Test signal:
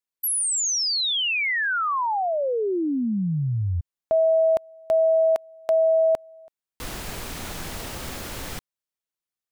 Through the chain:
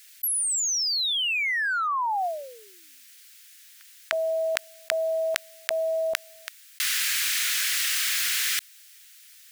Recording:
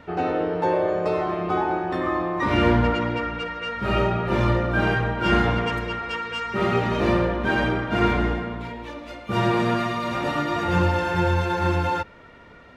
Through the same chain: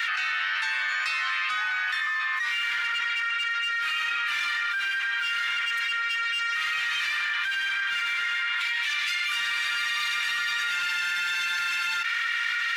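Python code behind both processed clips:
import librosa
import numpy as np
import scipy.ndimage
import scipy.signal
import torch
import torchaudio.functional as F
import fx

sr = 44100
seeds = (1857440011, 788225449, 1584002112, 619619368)

p1 = scipy.signal.sosfilt(scipy.signal.butter(6, 1600.0, 'highpass', fs=sr, output='sos'), x)
p2 = np.clip(10.0 ** (36.0 / 20.0) * p1, -1.0, 1.0) / 10.0 ** (36.0 / 20.0)
p3 = p1 + (p2 * 10.0 ** (-8.5 / 20.0))
p4 = fx.env_flatten(p3, sr, amount_pct=100)
y = p4 * 10.0 ** (-2.5 / 20.0)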